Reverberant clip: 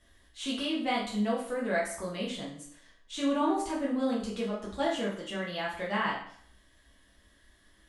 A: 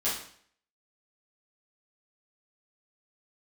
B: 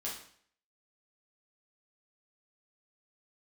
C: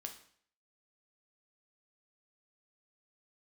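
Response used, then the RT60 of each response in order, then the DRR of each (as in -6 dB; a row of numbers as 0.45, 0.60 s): B; 0.60, 0.60, 0.60 s; -10.0, -5.5, 4.0 dB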